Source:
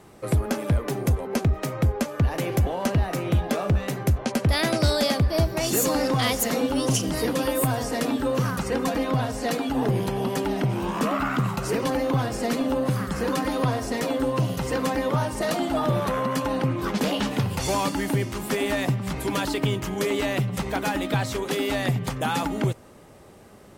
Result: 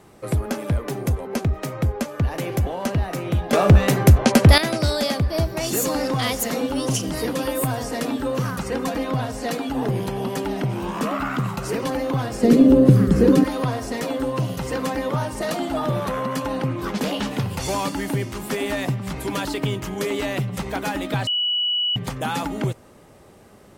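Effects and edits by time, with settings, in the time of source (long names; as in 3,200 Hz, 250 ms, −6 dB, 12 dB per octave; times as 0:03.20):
0:03.53–0:04.58: clip gain +10 dB
0:12.43–0:13.44: low shelf with overshoot 570 Hz +11.5 dB, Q 1.5
0:21.27–0:21.96: beep over 2,940 Hz −19 dBFS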